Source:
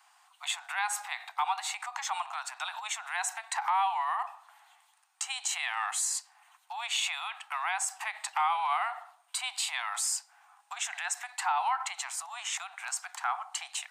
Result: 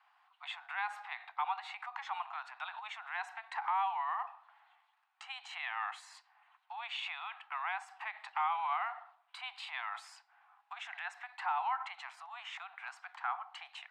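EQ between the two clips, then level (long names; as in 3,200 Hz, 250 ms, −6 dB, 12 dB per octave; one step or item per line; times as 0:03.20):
Bessel high-pass filter 740 Hz
high-frequency loss of the air 390 metres
−1.5 dB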